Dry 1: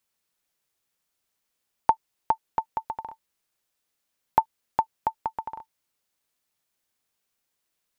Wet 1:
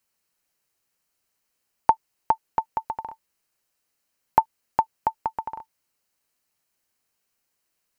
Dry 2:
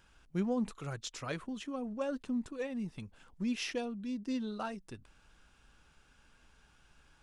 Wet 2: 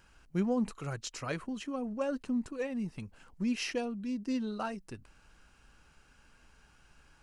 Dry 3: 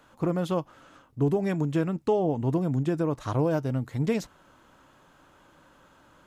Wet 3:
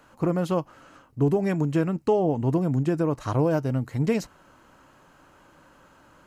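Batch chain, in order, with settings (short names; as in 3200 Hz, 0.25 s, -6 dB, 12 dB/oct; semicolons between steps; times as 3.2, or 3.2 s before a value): notch 3500 Hz, Q 7.3; gain +2.5 dB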